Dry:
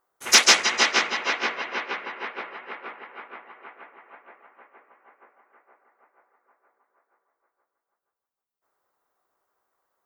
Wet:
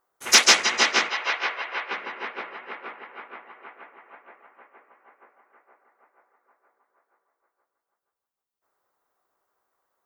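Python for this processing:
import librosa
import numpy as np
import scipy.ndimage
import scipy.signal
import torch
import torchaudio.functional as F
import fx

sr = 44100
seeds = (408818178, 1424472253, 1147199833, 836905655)

y = fx.bandpass_edges(x, sr, low_hz=540.0, high_hz=fx.line((1.08, 5700.0), (1.9, 3900.0)), at=(1.08, 1.9), fade=0.02)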